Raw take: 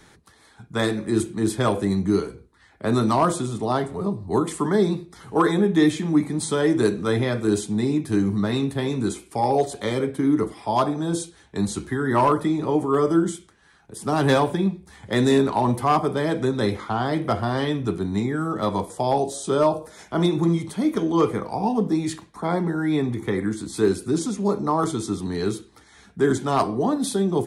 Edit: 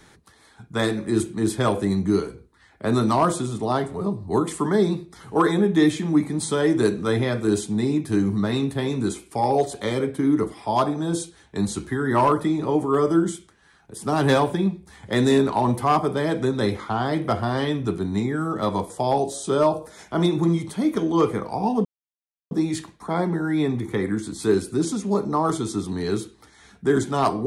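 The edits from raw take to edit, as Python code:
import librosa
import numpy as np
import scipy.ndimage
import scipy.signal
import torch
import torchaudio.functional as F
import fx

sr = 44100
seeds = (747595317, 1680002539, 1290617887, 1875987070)

y = fx.edit(x, sr, fx.insert_silence(at_s=21.85, length_s=0.66), tone=tone)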